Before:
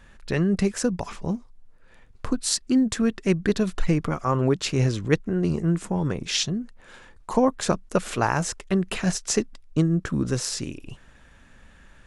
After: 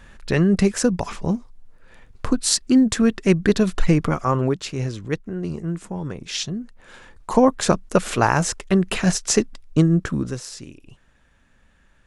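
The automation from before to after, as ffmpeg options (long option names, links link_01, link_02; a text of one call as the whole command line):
ffmpeg -i in.wav -af "volume=14dB,afade=type=out:start_time=4.14:duration=0.53:silence=0.354813,afade=type=in:start_time=6.25:duration=1.17:silence=0.354813,afade=type=out:start_time=9.96:duration=0.45:silence=0.251189" out.wav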